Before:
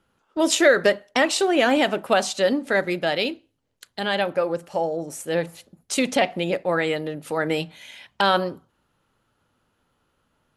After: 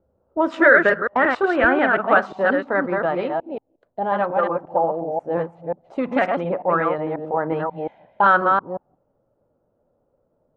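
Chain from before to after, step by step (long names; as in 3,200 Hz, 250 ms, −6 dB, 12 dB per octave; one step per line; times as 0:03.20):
delay that plays each chunk backwards 179 ms, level −3 dB
parametric band 74 Hz +12.5 dB 0.62 octaves, from 0:01.64 −4 dB
envelope-controlled low-pass 580–1,500 Hz up, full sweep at −14.5 dBFS
level −2 dB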